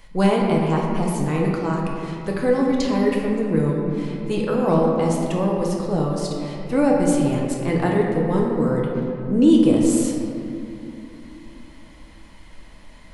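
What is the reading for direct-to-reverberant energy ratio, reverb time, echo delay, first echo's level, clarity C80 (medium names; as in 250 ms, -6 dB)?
-2.0 dB, 2.9 s, no echo, no echo, 2.0 dB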